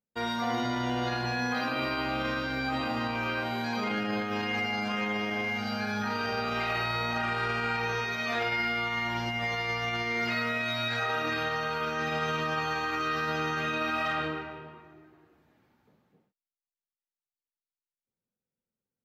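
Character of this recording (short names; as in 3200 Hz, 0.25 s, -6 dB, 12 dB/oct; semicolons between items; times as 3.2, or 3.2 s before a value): noise floor -96 dBFS; spectral tilt -2.5 dB/oct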